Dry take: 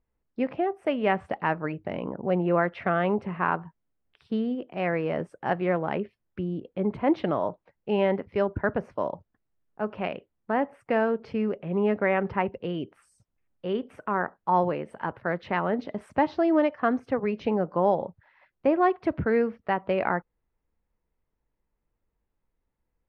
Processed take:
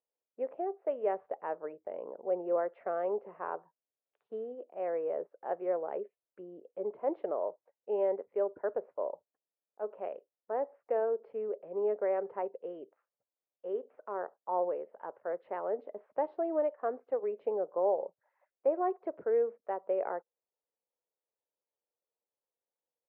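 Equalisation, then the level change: dynamic EQ 410 Hz, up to +7 dB, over -39 dBFS, Q 2.8; ladder band-pass 640 Hz, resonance 45%; 0.0 dB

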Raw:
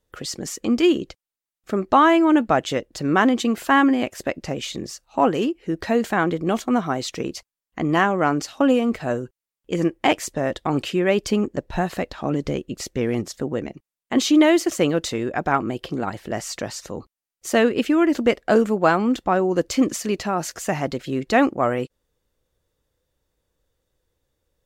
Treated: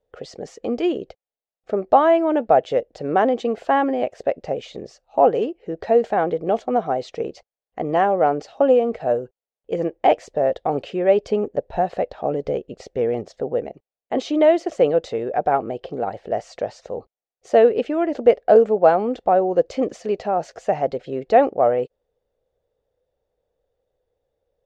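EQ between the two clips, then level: air absorption 130 m; band shelf 580 Hz +13 dB 1.2 oct; -6.5 dB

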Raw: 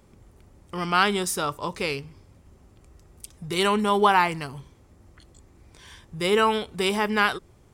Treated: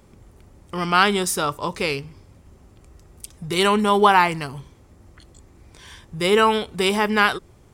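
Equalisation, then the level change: none; +4.0 dB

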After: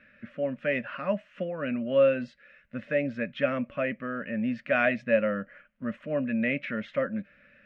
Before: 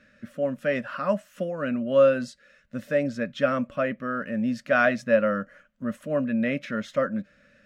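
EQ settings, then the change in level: dynamic EQ 1300 Hz, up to -7 dB, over -39 dBFS, Q 1.5; synth low-pass 2400 Hz, resonance Q 2.5; -3.0 dB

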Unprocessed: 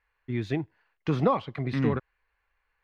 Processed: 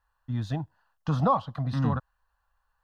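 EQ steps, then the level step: fixed phaser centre 920 Hz, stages 4; +4.0 dB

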